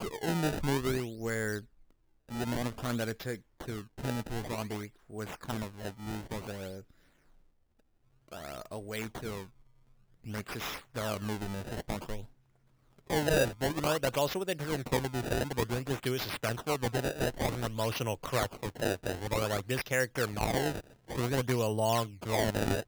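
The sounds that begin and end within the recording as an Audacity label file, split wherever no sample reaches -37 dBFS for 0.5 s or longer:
2.320000	6.800000	sound
8.330000	9.420000	sound
10.270000	12.240000	sound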